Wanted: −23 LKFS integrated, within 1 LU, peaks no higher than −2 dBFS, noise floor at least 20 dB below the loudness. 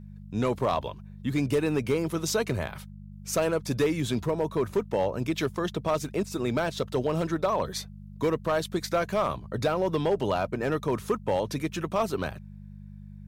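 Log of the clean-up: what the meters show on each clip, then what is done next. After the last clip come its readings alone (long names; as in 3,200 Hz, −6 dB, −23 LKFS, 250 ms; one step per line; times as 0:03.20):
share of clipped samples 0.9%; peaks flattened at −18.0 dBFS; mains hum 50 Hz; hum harmonics up to 200 Hz; level of the hum −42 dBFS; integrated loudness −28.5 LKFS; sample peak −18.0 dBFS; target loudness −23.0 LKFS
→ clipped peaks rebuilt −18 dBFS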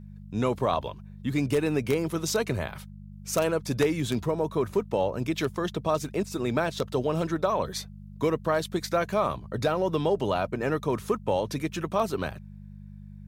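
share of clipped samples 0.0%; mains hum 50 Hz; hum harmonics up to 200 Hz; level of the hum −42 dBFS
→ hum removal 50 Hz, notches 4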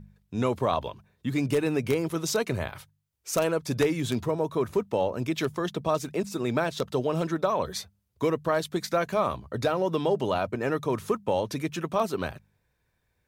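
mains hum none found; integrated loudness −28.5 LKFS; sample peak −9.0 dBFS; target loudness −23.0 LKFS
→ level +5.5 dB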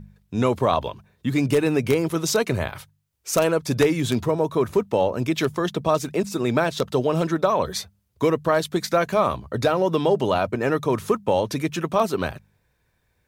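integrated loudness −23.0 LKFS; sample peak −3.5 dBFS; background noise floor −69 dBFS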